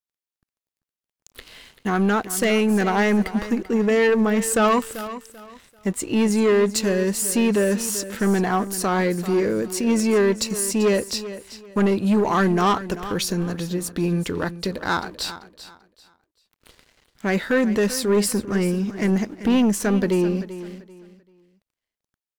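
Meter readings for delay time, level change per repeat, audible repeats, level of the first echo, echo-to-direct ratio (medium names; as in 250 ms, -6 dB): 389 ms, -11.5 dB, 2, -14.0 dB, -13.5 dB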